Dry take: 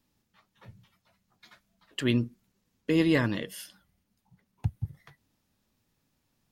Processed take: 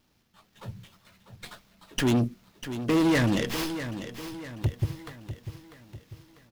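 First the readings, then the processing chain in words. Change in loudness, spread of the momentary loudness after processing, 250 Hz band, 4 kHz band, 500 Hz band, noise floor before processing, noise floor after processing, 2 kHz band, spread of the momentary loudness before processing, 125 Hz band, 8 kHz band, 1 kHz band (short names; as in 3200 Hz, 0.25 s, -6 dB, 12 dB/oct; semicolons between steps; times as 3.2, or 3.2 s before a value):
+1.5 dB, 22 LU, +3.0 dB, +3.5 dB, +2.5 dB, -77 dBFS, -68 dBFS, +2.5 dB, 17 LU, +3.5 dB, +9.0 dB, +8.5 dB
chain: high shelf 5000 Hz +9.5 dB; in parallel at -2.5 dB: limiter -20 dBFS, peak gain reduction 8.5 dB; on the sum: AGC gain up to 7 dB; LFO notch sine 3.4 Hz 740–2200 Hz; vibrato 0.52 Hz 5.1 cents; soft clip -19 dBFS, distortion -7 dB; feedback echo 0.646 s, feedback 47%, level -11 dB; running maximum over 5 samples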